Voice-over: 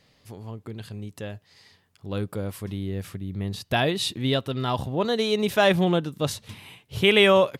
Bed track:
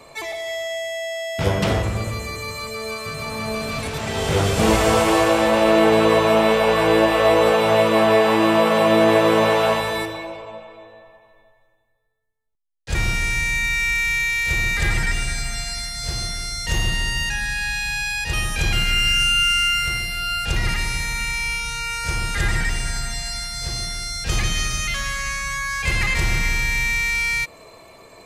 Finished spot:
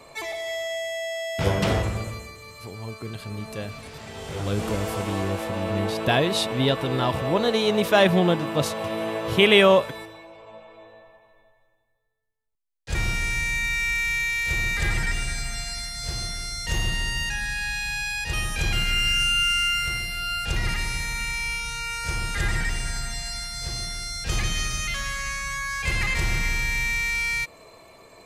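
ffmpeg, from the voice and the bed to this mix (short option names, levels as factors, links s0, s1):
-filter_complex "[0:a]adelay=2350,volume=1.19[s0];[1:a]volume=2.24,afade=t=out:st=1.81:d=0.54:silence=0.281838,afade=t=in:st=10.3:d=0.59:silence=0.334965[s1];[s0][s1]amix=inputs=2:normalize=0"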